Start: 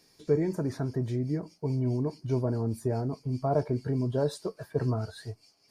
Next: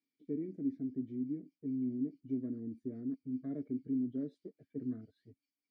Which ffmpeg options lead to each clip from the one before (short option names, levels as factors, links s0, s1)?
-filter_complex "[0:a]afwtdn=0.0141,asplit=3[s0][s1][s2];[s0]bandpass=f=270:t=q:w=8,volume=1[s3];[s1]bandpass=f=2290:t=q:w=8,volume=0.501[s4];[s2]bandpass=f=3010:t=q:w=8,volume=0.355[s5];[s3][s4][s5]amix=inputs=3:normalize=0,volume=1.12"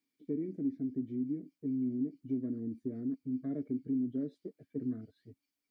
-af "acompressor=threshold=0.0112:ratio=1.5,volume=1.68"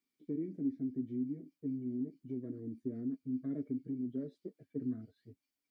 -af "flanger=delay=5.1:depth=3.5:regen=-43:speed=0.47:shape=sinusoidal,volume=1.19"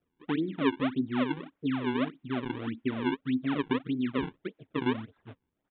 -af "acrusher=samples=40:mix=1:aa=0.000001:lfo=1:lforange=64:lforate=1.7,aresample=8000,aresample=44100,volume=2.51"